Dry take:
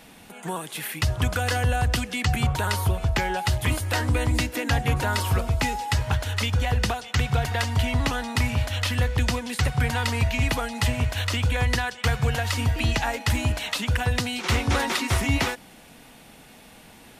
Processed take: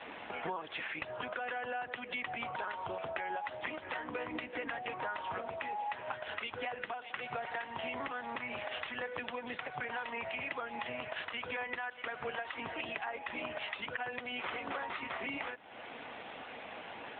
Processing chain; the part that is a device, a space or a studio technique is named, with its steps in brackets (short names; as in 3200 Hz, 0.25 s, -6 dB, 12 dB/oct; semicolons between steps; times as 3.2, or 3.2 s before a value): voicemail (BPF 420–2800 Hz; compressor 10:1, threshold -43 dBFS, peak gain reduction 20.5 dB; gain +8.5 dB; AMR-NB 7.95 kbps 8000 Hz)